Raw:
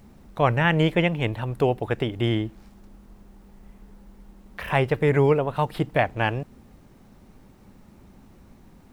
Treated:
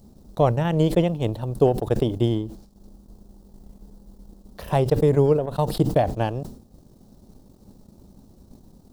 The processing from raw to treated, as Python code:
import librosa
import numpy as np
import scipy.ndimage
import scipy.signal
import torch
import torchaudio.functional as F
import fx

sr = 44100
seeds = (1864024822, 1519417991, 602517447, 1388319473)

y = fx.curve_eq(x, sr, hz=(610.0, 2200.0, 4300.0), db=(0, -18, 2))
y = fx.transient(y, sr, attack_db=5, sustain_db=-11)
y = fx.sustainer(y, sr, db_per_s=94.0)